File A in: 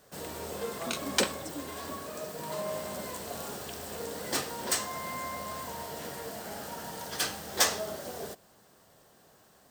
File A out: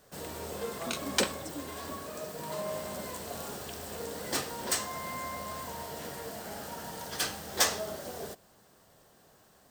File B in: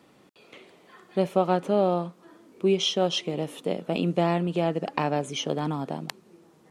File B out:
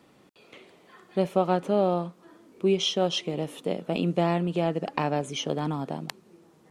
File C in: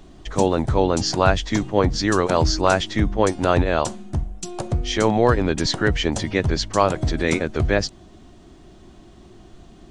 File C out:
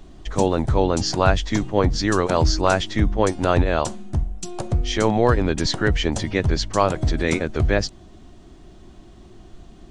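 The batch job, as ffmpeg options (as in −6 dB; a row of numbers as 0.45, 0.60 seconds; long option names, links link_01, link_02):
-af "lowshelf=frequency=67:gain=6,volume=-1dB"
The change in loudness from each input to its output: −1.0, −1.0, −0.5 LU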